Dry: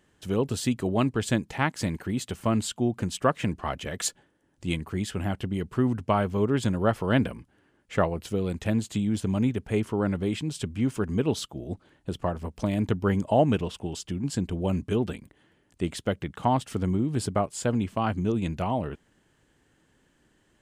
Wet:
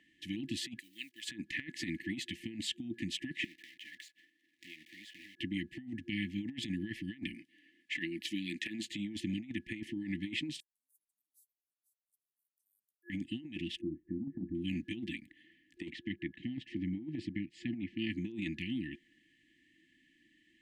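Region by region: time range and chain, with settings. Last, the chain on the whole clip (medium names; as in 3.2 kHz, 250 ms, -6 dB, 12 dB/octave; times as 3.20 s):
0.79–1.27 s: block-companded coder 7-bit + differentiator
3.44–5.39 s: block-companded coder 3-bit + high-pass 650 Hz 6 dB/octave + compression, threshold -47 dBFS
7.34–8.85 s: high-pass 200 Hz + treble shelf 2 kHz +6 dB
10.60–13.10 s: inverse Chebyshev high-pass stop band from 2.7 kHz, stop band 80 dB + delay 490 ms -12 dB
13.81–14.55 s: steep low-pass 1.3 kHz 48 dB/octave + doubling 26 ms -10.5 dB
15.90–17.99 s: tape spacing loss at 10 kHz 25 dB + band-stop 3.5 kHz, Q 25
whole clip: FFT band-reject 350–1700 Hz; three-band isolator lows -22 dB, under 300 Hz, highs -18 dB, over 3.5 kHz; compressor with a negative ratio -39 dBFS, ratio -0.5; trim +2 dB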